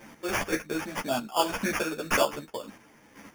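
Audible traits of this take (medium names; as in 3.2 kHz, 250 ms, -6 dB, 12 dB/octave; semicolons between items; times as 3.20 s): aliases and images of a low sample rate 4 kHz, jitter 0%; chopped level 1.9 Hz, depth 60%, duty 25%; a quantiser's noise floor 12-bit, dither none; a shimmering, thickened sound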